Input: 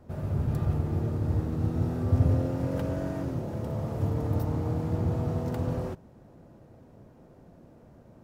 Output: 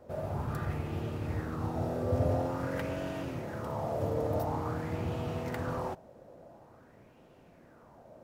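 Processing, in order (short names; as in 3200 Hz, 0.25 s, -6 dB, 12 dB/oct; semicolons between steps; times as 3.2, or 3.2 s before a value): low shelf 340 Hz -9 dB; LFO bell 0.48 Hz 530–2900 Hz +11 dB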